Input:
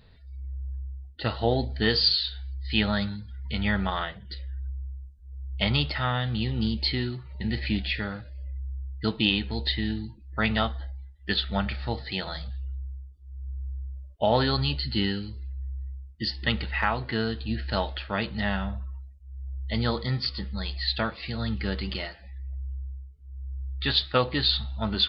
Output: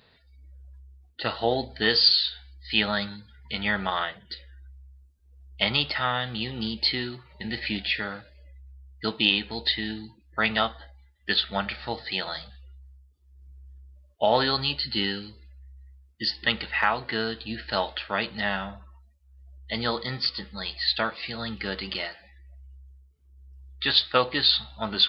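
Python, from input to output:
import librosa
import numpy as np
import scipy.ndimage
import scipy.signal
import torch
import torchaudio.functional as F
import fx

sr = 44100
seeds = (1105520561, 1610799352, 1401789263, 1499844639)

y = fx.highpass(x, sr, hz=480.0, slope=6)
y = y * 10.0 ** (3.5 / 20.0)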